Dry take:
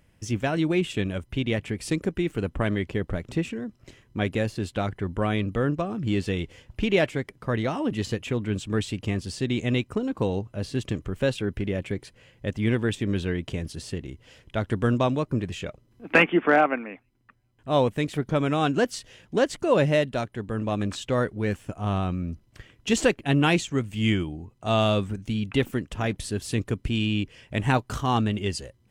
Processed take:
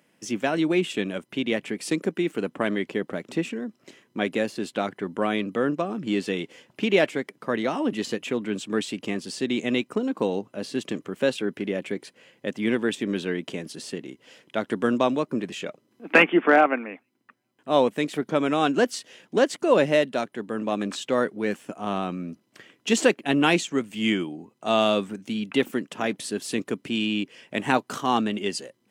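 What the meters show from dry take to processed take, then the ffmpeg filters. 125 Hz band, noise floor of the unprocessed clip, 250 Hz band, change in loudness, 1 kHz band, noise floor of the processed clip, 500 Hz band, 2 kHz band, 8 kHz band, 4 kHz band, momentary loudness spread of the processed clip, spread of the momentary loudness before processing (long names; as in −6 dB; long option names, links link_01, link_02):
−10.5 dB, −62 dBFS, +1.0 dB, +1.0 dB, +2.0 dB, −69 dBFS, +2.0 dB, +2.0 dB, +2.0 dB, +2.0 dB, 13 LU, 11 LU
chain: -af "highpass=frequency=200:width=0.5412,highpass=frequency=200:width=1.3066,volume=2dB"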